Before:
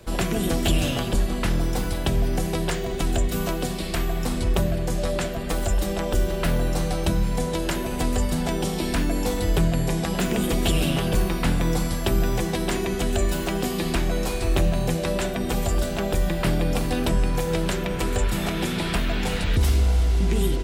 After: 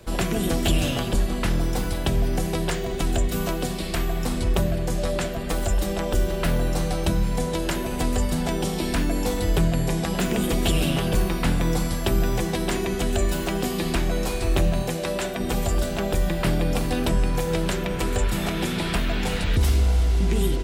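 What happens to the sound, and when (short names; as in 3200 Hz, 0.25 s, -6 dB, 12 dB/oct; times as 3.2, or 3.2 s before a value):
14.82–15.4 low shelf 170 Hz -9.5 dB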